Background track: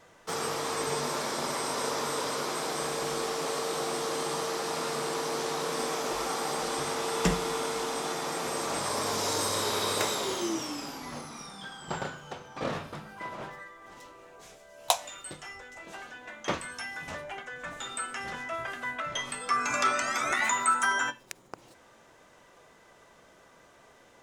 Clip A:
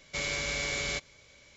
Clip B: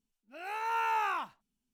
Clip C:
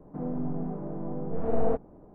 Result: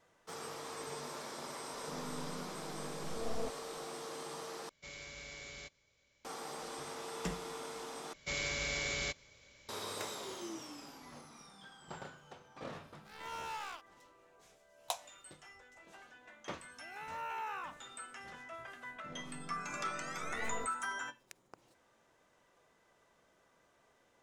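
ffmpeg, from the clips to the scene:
ffmpeg -i bed.wav -i cue0.wav -i cue1.wav -i cue2.wav -filter_complex "[3:a]asplit=2[link_01][link_02];[1:a]asplit=2[link_03][link_04];[2:a]asplit=2[link_05][link_06];[0:a]volume=-13dB[link_07];[link_05]acrusher=bits=4:mix=0:aa=0.5[link_08];[link_07]asplit=3[link_09][link_10][link_11];[link_09]atrim=end=4.694[link_12];[link_03]atrim=end=1.56,asetpts=PTS-STARTPTS,volume=-16.5dB[link_13];[link_10]atrim=start=6.246:end=8.134[link_14];[link_04]atrim=end=1.56,asetpts=PTS-STARTPTS,volume=-4.5dB[link_15];[link_11]atrim=start=9.686[link_16];[link_01]atrim=end=2.14,asetpts=PTS-STARTPTS,volume=-14dB,afade=type=in:duration=0.004:curve=hsin,afade=type=out:start_time=2.136:duration=0.004:curve=hsin,adelay=1730[link_17];[link_08]atrim=end=1.73,asetpts=PTS-STARTPTS,volume=-13dB,afade=type=in:duration=0.004:curve=hsin,afade=type=out:start_time=1.726:duration=0.004:curve=hsin,adelay=12580[link_18];[link_06]atrim=end=1.73,asetpts=PTS-STARTPTS,volume=-10.5dB,afade=type=in:duration=0.004:curve=hsin,afade=type=out:start_time=1.726:duration=0.004:curve=hsin,adelay=16470[link_19];[link_02]atrim=end=2.14,asetpts=PTS-STARTPTS,volume=-18dB,afade=type=in:duration=0.004:curve=hsin,afade=type=out:start_time=2.136:duration=0.004:curve=hsin,adelay=18900[link_20];[link_12][link_13]acrossfade=duration=0.004:curve1=hsin:curve2=hsin[link_21];[link_21][link_14]acrossfade=duration=0.004:curve1=hsin:curve2=hsin[link_22];[link_22][link_15]acrossfade=duration=0.004:curve1=hsin:curve2=hsin[link_23];[link_23][link_16]acrossfade=duration=0.004:curve1=hsin:curve2=hsin[link_24];[link_24][link_17][link_18][link_19][link_20]amix=inputs=5:normalize=0" out.wav

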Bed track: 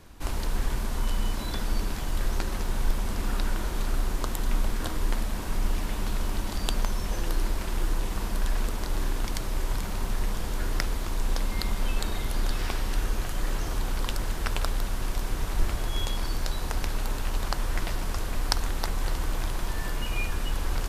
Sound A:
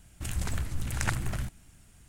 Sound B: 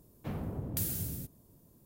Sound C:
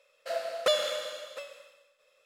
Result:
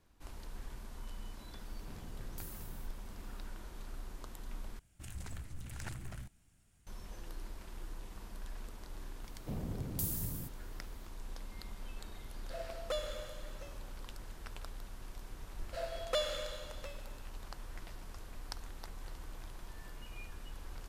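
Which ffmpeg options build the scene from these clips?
ffmpeg -i bed.wav -i cue0.wav -i cue1.wav -i cue2.wav -filter_complex "[2:a]asplit=2[link_01][link_02];[3:a]asplit=2[link_03][link_04];[0:a]volume=-18.5dB[link_05];[link_01]acompressor=mode=upward:threshold=-41dB:ratio=2.5:attack=3.2:release=140:knee=2.83:detection=peak[link_06];[1:a]asoftclip=type=hard:threshold=-21.5dB[link_07];[link_02]equalizer=frequency=1700:width=0.85:gain=-10[link_08];[link_03]equalizer=frequency=3600:width=0.54:gain=-4[link_09];[link_05]asplit=2[link_10][link_11];[link_10]atrim=end=4.794[link_12];[link_07]atrim=end=2.08,asetpts=PTS-STARTPTS,volume=-13dB[link_13];[link_11]atrim=start=6.866[link_14];[link_06]atrim=end=1.85,asetpts=PTS-STARTPTS,volume=-15dB,afade=type=in:duration=0.004:curve=hsin,afade=type=out:start_time=1.846:duration=0.004:curve=hsin,adelay=1610[link_15];[link_08]atrim=end=1.85,asetpts=PTS-STARTPTS,volume=-2.5dB,afade=type=in:duration=0.004:curve=hsin,afade=type=out:start_time=1.846:duration=0.004:curve=hsin,adelay=406602S[link_16];[link_09]atrim=end=2.25,asetpts=PTS-STARTPTS,volume=-11dB,afade=type=in:duration=0.004:curve=hsin,afade=type=out:start_time=2.246:duration=0.004:curve=hsin,adelay=12240[link_17];[link_04]atrim=end=2.25,asetpts=PTS-STARTPTS,volume=-8dB,afade=type=in:duration=0.004:curve=hsin,afade=type=out:start_time=2.246:duration=0.004:curve=hsin,adelay=15470[link_18];[link_12][link_13]acrossfade=duration=0.004:curve1=hsin:curve2=hsin[link_19];[link_19][link_14]acrossfade=duration=0.004:curve1=hsin:curve2=hsin[link_20];[link_20][link_15][link_16][link_17][link_18]amix=inputs=5:normalize=0" out.wav

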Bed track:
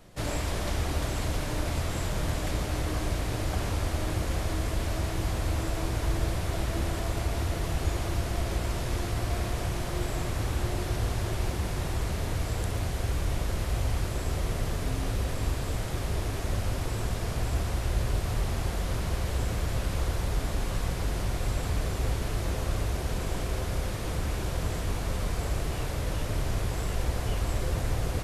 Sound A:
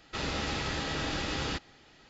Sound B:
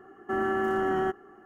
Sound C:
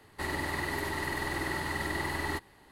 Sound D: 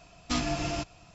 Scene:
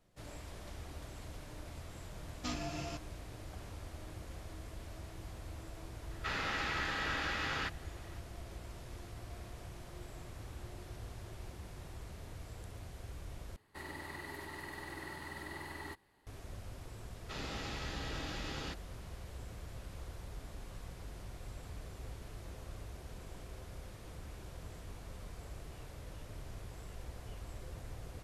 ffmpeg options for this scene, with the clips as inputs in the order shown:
ffmpeg -i bed.wav -i cue0.wav -i cue1.wav -i cue2.wav -i cue3.wav -filter_complex "[1:a]asplit=2[link_01][link_02];[0:a]volume=-18dB[link_03];[link_01]equalizer=frequency=1600:width_type=o:width=1.8:gain=13[link_04];[link_03]asplit=2[link_05][link_06];[link_05]atrim=end=13.564[link_07];[3:a]atrim=end=2.71,asetpts=PTS-STARTPTS,volume=-12.5dB[link_08];[link_06]atrim=start=16.266[link_09];[4:a]atrim=end=1.14,asetpts=PTS-STARTPTS,volume=-10.5dB,afade=type=in:duration=0.004:curve=hsin,afade=type=out:start_time=1.136:duration=0.004:curve=hsin,adelay=2140[link_10];[link_04]atrim=end=2.09,asetpts=PTS-STARTPTS,volume=-10.5dB,afade=type=in:duration=0.004:curve=hsin,afade=type=out:start_time=2.086:duration=0.004:curve=hsin,adelay=6110[link_11];[link_02]atrim=end=2.09,asetpts=PTS-STARTPTS,volume=-9.5dB,afade=type=in:duration=0.004:curve=hsin,afade=type=out:start_time=2.086:duration=0.004:curve=hsin,adelay=756756S[link_12];[link_07][link_08]acrossfade=duration=0.004:curve1=hsin:curve2=hsin[link_13];[link_13][link_09]acrossfade=duration=0.004:curve1=hsin:curve2=hsin[link_14];[link_14][link_10][link_11][link_12]amix=inputs=4:normalize=0" out.wav

